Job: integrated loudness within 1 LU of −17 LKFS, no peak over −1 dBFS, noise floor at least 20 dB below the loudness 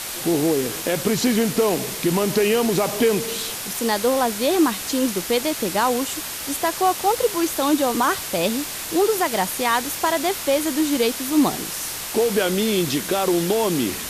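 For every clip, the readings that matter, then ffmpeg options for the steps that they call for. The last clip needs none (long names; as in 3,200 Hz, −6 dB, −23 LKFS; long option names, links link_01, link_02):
background noise floor −31 dBFS; target noise floor −41 dBFS; integrated loudness −21.0 LKFS; sample peak −8.0 dBFS; target loudness −17.0 LKFS
→ -af "afftdn=noise_reduction=10:noise_floor=-31"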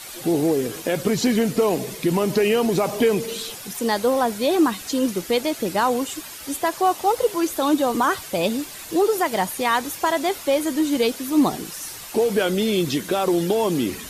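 background noise floor −37 dBFS; target noise floor −42 dBFS
→ -af "afftdn=noise_reduction=6:noise_floor=-37"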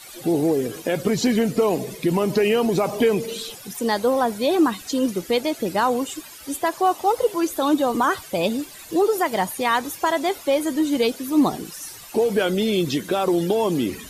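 background noise floor −41 dBFS; target noise floor −42 dBFS
→ -af "afftdn=noise_reduction=6:noise_floor=-41"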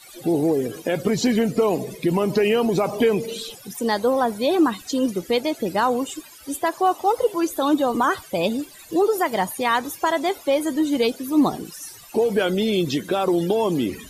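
background noise floor −45 dBFS; integrated loudness −22.0 LKFS; sample peak −9.0 dBFS; target loudness −17.0 LKFS
→ -af "volume=5dB"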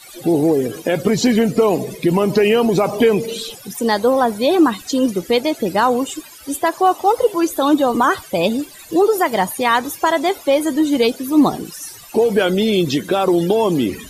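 integrated loudness −17.0 LKFS; sample peak −4.0 dBFS; background noise floor −40 dBFS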